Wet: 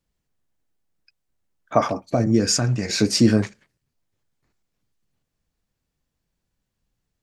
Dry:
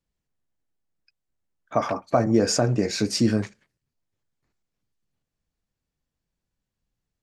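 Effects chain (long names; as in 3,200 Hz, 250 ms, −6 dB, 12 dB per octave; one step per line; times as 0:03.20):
0:01.87–0:02.88: parametric band 1,700 Hz → 350 Hz −14 dB 1.7 octaves
level +5 dB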